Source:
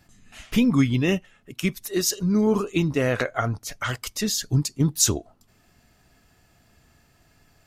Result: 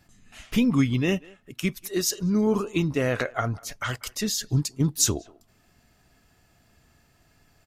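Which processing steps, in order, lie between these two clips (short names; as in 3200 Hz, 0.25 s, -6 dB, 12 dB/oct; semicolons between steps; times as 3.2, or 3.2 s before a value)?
speakerphone echo 0.19 s, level -22 dB; gain -2 dB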